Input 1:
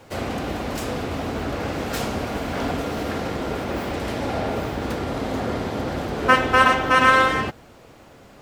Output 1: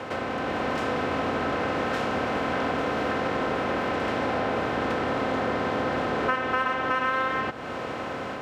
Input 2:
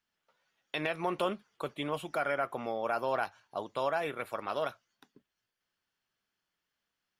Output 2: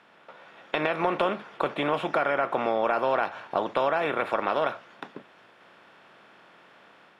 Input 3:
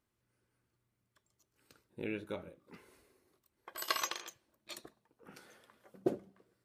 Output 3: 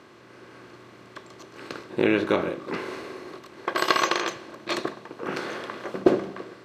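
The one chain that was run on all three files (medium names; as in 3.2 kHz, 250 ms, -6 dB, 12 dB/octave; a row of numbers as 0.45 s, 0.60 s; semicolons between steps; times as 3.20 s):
spectral levelling over time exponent 0.6; frequency weighting A; compression 3:1, threshold -31 dBFS; RIAA curve playback; level rider gain up to 3.5 dB; normalise loudness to -27 LUFS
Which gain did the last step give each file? +0.5 dB, +5.0 dB, +12.5 dB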